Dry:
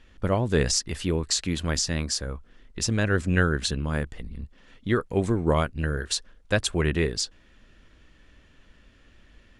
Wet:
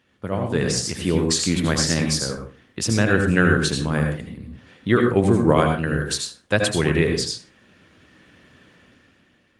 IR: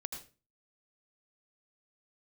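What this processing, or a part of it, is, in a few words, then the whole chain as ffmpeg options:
far-field microphone of a smart speaker: -filter_complex "[1:a]atrim=start_sample=2205[s0];[0:a][s0]afir=irnorm=-1:irlink=0,highpass=f=100:w=0.5412,highpass=f=100:w=1.3066,dynaudnorm=f=140:g=11:m=3.55" -ar 48000 -c:a libopus -b:a 32k

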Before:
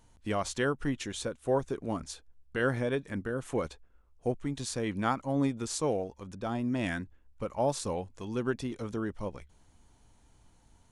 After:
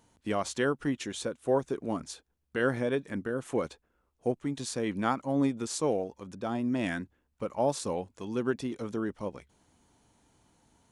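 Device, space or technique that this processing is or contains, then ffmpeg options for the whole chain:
filter by subtraction: -filter_complex "[0:a]asplit=2[s0][s1];[s1]lowpass=250,volume=-1[s2];[s0][s2]amix=inputs=2:normalize=0"

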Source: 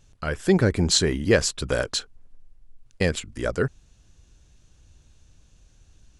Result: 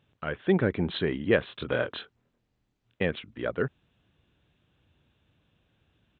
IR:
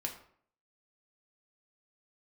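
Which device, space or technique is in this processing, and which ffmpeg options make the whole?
Bluetooth headset: -filter_complex "[0:a]asettb=1/sr,asplit=3[s0][s1][s2];[s0]atrim=end=1.474[s3];[s1]atrim=start=1.47:end=3.02,asetpts=PTS-STARTPTS,afade=t=in:d=0.004:c=qsin,afade=t=out:st=1.546:d=0.004:c=qsin,asplit=2[s4][s5];[s5]adelay=25,volume=0.708[s6];[s4][s6]amix=inputs=2:normalize=0,atrim=end_sample=68355[s7];[s2]atrim=start=3.016[s8];[s3][s7]acrossfade=d=0.004:c1=hsin:c2=qsin[s9];[s9][s8]acrossfade=d=0.004:c1=qsin:c2=hsin,highpass=130,aresample=8000,aresample=44100,volume=0.631" -ar 16000 -c:a sbc -b:a 64k

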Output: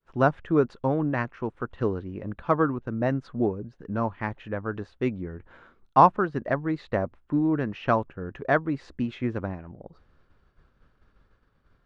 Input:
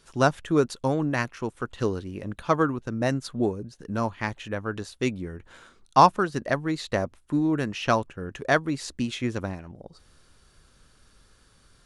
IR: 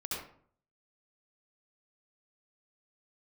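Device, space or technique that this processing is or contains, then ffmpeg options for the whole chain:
hearing-loss simulation: -af "lowpass=1800,agate=range=0.0224:threshold=0.00224:ratio=3:detection=peak"

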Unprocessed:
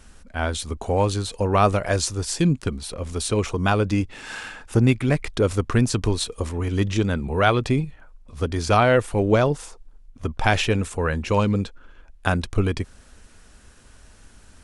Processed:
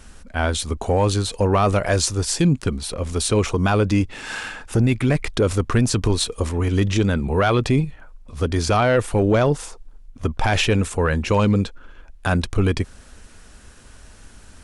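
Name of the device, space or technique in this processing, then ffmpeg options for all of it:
soft clipper into limiter: -af "asoftclip=type=tanh:threshold=0.422,alimiter=limit=0.188:level=0:latency=1:release=12,volume=1.68"

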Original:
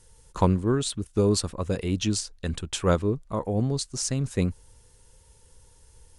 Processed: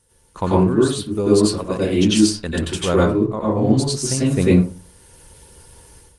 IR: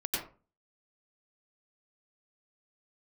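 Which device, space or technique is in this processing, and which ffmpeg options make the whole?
far-field microphone of a smart speaker: -filter_complex "[0:a]asettb=1/sr,asplit=3[s0][s1][s2];[s0]atrim=end=1.114[s3];[s1]atrim=start=1.11:end=2.56,asetpts=PTS-STARTPTS,afade=t=in:d=0.004:c=qsin,afade=t=out:st=1.446:d=0.004:c=qsin,equalizer=f=100:t=o:w=1:g=-4[s4];[s2]atrim=start=2.556[s5];[s3][s4]acrossfade=d=0.004:c1=hsin:c2=qsin[s6];[s6][s5]acrossfade=d=0.004:c1=qsin:c2=hsin,asettb=1/sr,asplit=3[s7][s8][s9];[s7]atrim=end=3.244[s10];[s8]atrim=start=3.24:end=3.73,asetpts=PTS-STARTPTS,afade=t=in:d=0.004:c=qsin,afade=t=out:st=0.486:d=0.004:c=qsin,lowpass=f=7800:w=0.5412,lowpass=f=7800:w=1.3066[s11];[s9]atrim=start=3.726[s12];[s10][s11]acrossfade=d=0.004:c1=hsin:c2=qsin[s13];[s13][s12]acrossfade=d=0.004:c1=qsin:c2=hsin[s14];[1:a]atrim=start_sample=2205[s15];[s14][s15]afir=irnorm=-1:irlink=0,highpass=f=98:p=1,dynaudnorm=f=260:g=3:m=3.98,volume=0.891" -ar 48000 -c:a libopus -b:a 32k

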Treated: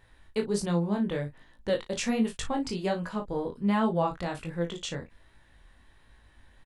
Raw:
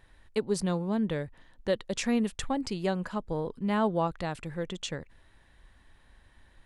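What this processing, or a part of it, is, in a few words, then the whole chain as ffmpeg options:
double-tracked vocal: -filter_complex "[0:a]asplit=2[s0][s1];[s1]adelay=35,volume=0.316[s2];[s0][s2]amix=inputs=2:normalize=0,flanger=delay=17.5:depth=5:speed=1.3,volume=1.5"

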